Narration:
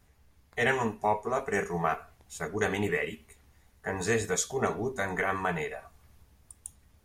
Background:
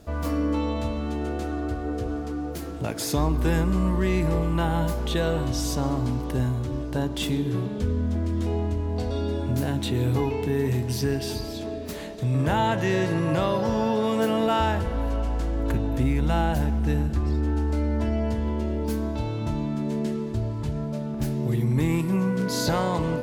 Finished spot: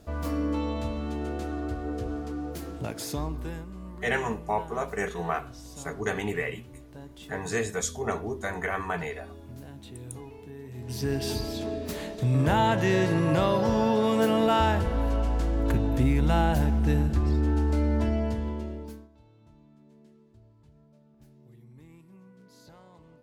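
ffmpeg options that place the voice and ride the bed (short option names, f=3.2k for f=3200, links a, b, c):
-filter_complex "[0:a]adelay=3450,volume=-1dB[a];[1:a]volume=15dB,afade=t=out:st=2.72:d=0.94:silence=0.177828,afade=t=in:st=10.73:d=0.57:silence=0.11885,afade=t=out:st=17.97:d=1.11:silence=0.0354813[b];[a][b]amix=inputs=2:normalize=0"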